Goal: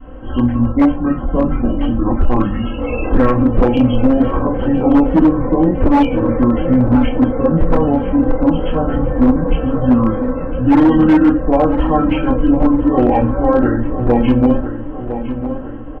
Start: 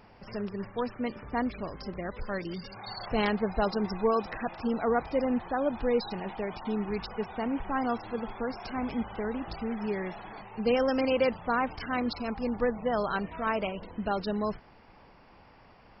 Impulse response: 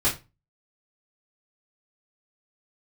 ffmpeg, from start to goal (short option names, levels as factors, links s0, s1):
-filter_complex "[0:a]alimiter=limit=0.075:level=0:latency=1:release=119,adynamicequalizer=threshold=0.00398:dfrequency=870:dqfactor=4.8:tfrequency=870:tqfactor=4.8:attack=5:release=100:ratio=0.375:range=1.5:mode=boostabove:tftype=bell,bandreject=f=82.72:t=h:w=4,bandreject=f=165.44:t=h:w=4,bandreject=f=248.16:t=h:w=4,bandreject=f=330.88:t=h:w=4,bandreject=f=413.6:t=h:w=4,bandreject=f=496.32:t=h:w=4,bandreject=f=579.04:t=h:w=4,bandreject=f=661.76:t=h:w=4,bandreject=f=744.48:t=h:w=4,bandreject=f=827.2:t=h:w=4,bandreject=f=909.92:t=h:w=4,bandreject=f=992.64:t=h:w=4,bandreject=f=1075.36:t=h:w=4,bandreject=f=1158.08:t=h:w=4,bandreject=f=1240.8:t=h:w=4,bandreject=f=1323.52:t=h:w=4,bandreject=f=1406.24:t=h:w=4,bandreject=f=1488.96:t=h:w=4,bandreject=f=1571.68:t=h:w=4,bandreject=f=1654.4:t=h:w=4,bandreject=f=1737.12:t=h:w=4,bandreject=f=1819.84:t=h:w=4,bandreject=f=1902.56:t=h:w=4,asetrate=26222,aresample=44100,atempo=1.68179,aecho=1:1:3.8:0.8[s0];[1:a]atrim=start_sample=2205,asetrate=39690,aresample=44100[s1];[s0][s1]afir=irnorm=-1:irlink=0,aeval=exprs='0.398*(abs(mod(val(0)/0.398+3,4)-2)-1)':c=same,highshelf=f=3100:g=-11.5,asplit=2[s2][s3];[s3]adelay=1005,lowpass=f=2400:p=1,volume=0.299,asplit=2[s4][s5];[s5]adelay=1005,lowpass=f=2400:p=1,volume=0.54,asplit=2[s6][s7];[s7]adelay=1005,lowpass=f=2400:p=1,volume=0.54,asplit=2[s8][s9];[s9]adelay=1005,lowpass=f=2400:p=1,volume=0.54,asplit=2[s10][s11];[s11]adelay=1005,lowpass=f=2400:p=1,volume=0.54,asplit=2[s12][s13];[s13]adelay=1005,lowpass=f=2400:p=1,volume=0.54[s14];[s2][s4][s6][s8][s10][s12][s14]amix=inputs=7:normalize=0,volume=1.58"